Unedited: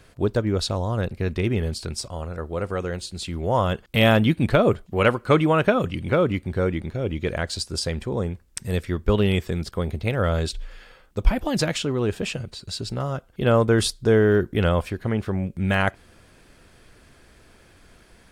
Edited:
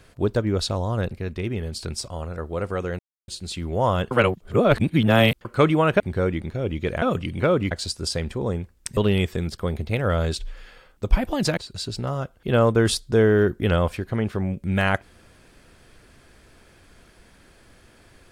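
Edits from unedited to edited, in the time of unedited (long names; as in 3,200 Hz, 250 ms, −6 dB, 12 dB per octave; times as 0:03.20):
0:01.19–0:01.74: clip gain −4.5 dB
0:02.99: splice in silence 0.29 s
0:03.82–0:05.16: reverse
0:05.71–0:06.40: move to 0:07.42
0:08.68–0:09.11: remove
0:11.71–0:12.50: remove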